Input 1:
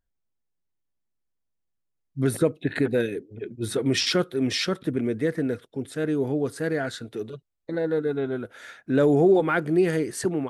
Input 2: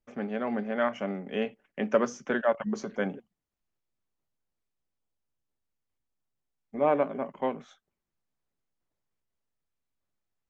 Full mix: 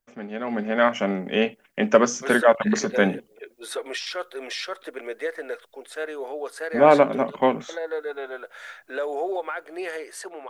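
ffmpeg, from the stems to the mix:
-filter_complex "[0:a]highpass=f=560:w=0.5412,highpass=f=560:w=1.3066,alimiter=limit=-23dB:level=0:latency=1:release=254,volume=2dB[a];[1:a]dynaudnorm=f=230:g=5:m=12dB,crystalizer=i=4.5:c=0,volume=-3dB[b];[a][b]amix=inputs=2:normalize=0,highshelf=f=3.8k:g=-7,dynaudnorm=f=480:g=7:m=5dB"

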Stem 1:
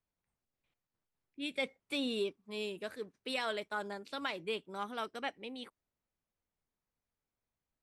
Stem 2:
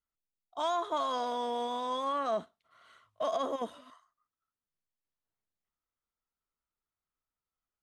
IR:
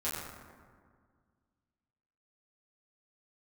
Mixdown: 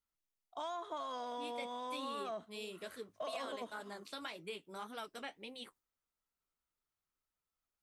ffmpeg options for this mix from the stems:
-filter_complex "[0:a]agate=range=-33dB:threshold=-59dB:ratio=3:detection=peak,highshelf=f=5.7k:g=11.5,flanger=delay=5.7:depth=8.3:regen=-43:speed=1.8:shape=sinusoidal,volume=1.5dB[a];[1:a]volume=-0.5dB[b];[a][b]amix=inputs=2:normalize=0,acompressor=threshold=-44dB:ratio=2.5"

